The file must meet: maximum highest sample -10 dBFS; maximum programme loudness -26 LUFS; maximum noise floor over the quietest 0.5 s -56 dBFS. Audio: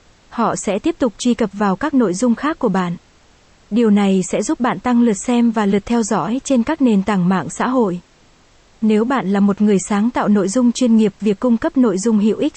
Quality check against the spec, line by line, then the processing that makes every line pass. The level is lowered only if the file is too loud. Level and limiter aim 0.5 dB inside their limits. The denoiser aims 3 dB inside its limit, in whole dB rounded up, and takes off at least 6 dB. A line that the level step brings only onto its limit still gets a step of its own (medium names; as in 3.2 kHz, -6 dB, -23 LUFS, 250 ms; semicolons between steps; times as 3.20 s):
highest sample -5.5 dBFS: fail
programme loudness -16.5 LUFS: fail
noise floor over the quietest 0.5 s -51 dBFS: fail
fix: trim -10 dB